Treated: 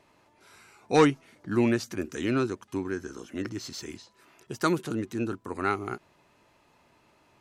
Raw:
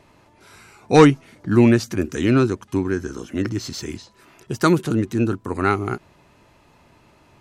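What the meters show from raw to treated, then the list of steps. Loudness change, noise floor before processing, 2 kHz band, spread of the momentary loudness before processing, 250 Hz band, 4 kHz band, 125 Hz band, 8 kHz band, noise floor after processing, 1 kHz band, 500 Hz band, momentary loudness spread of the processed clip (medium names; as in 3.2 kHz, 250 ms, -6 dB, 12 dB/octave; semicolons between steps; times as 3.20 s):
-9.5 dB, -55 dBFS, -7.0 dB, 16 LU, -10.0 dB, -7.0 dB, -13.0 dB, -7.0 dB, -64 dBFS, -7.5 dB, -8.5 dB, 17 LU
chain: bass shelf 180 Hz -9.5 dB; trim -7 dB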